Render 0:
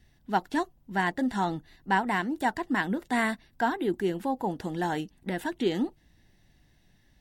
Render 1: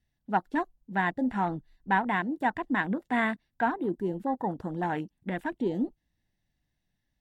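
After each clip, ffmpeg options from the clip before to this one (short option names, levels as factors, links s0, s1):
-af "afwtdn=0.0141,equalizer=f=380:t=o:w=0.37:g=-4"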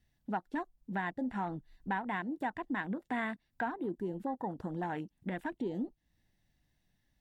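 -af "acompressor=threshold=0.00794:ratio=2.5,volume=1.5"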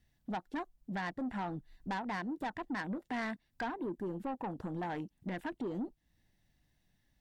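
-af "asoftclip=type=tanh:threshold=0.0211,volume=1.19"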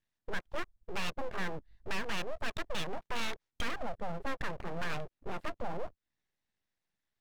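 -filter_complex "[0:a]afwtdn=0.00708,asplit=2[s0][s1];[s1]highpass=f=720:p=1,volume=2.82,asoftclip=type=tanh:threshold=0.0335[s2];[s0][s2]amix=inputs=2:normalize=0,lowpass=f=3400:p=1,volume=0.501,aeval=exprs='abs(val(0))':c=same,volume=2"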